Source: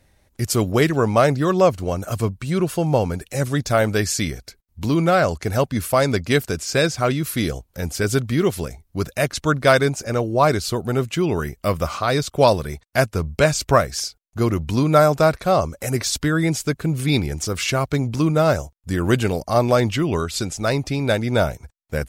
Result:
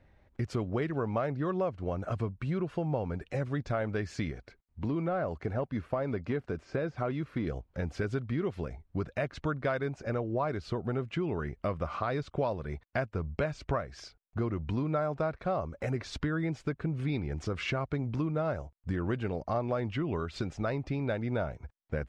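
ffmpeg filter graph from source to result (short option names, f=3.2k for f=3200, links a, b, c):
-filter_complex "[0:a]asettb=1/sr,asplit=3[a][b][c];[a]atrim=end=4.314[d];[b]atrim=start=4.31:end=7.47,asetpts=PTS-STARTPTS,afade=t=in:d=0.004:c=qsin,afade=t=out:st=3.156:d=0.004:c=qsin,deesser=0.9,lowshelf=f=170:g=-5[e];[c]atrim=start=7.466[f];[d][e]acrossfade=d=0.004:c1=hsin:c2=qsin[g];[g][f]acrossfade=d=0.004:c1=qsin:c2=hsin,lowpass=2.2k,acompressor=threshold=-27dB:ratio=4,volume=-3dB"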